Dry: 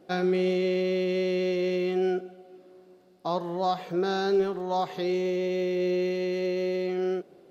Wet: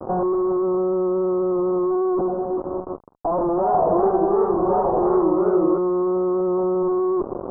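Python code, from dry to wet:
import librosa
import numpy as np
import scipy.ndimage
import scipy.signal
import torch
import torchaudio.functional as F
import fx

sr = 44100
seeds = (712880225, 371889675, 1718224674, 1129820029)

y = scipy.signal.sosfilt(scipy.signal.butter(4, 220.0, 'highpass', fs=sr, output='sos'), x)
y = fx.fuzz(y, sr, gain_db=55.0, gate_db=-53.0)
y = scipy.signal.sosfilt(scipy.signal.butter(8, 1100.0, 'lowpass', fs=sr, output='sos'), y)
y = fx.echo_warbled(y, sr, ms=80, feedback_pct=75, rate_hz=2.8, cents=186, wet_db=-3.5, at=(3.49, 5.78))
y = y * 10.0 ** (-6.0 / 20.0)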